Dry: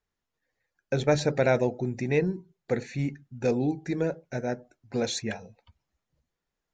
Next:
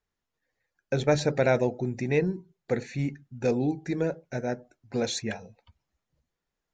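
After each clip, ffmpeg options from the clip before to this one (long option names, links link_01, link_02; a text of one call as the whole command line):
ffmpeg -i in.wav -af anull out.wav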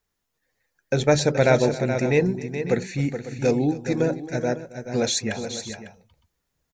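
ffmpeg -i in.wav -af "highshelf=frequency=6700:gain=9.5,aecho=1:1:268|425|550:0.119|0.355|0.188,volume=4.5dB" out.wav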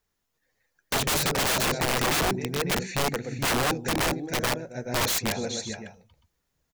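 ffmpeg -i in.wav -af "aeval=exprs='(mod(9.44*val(0)+1,2)-1)/9.44':channel_layout=same" out.wav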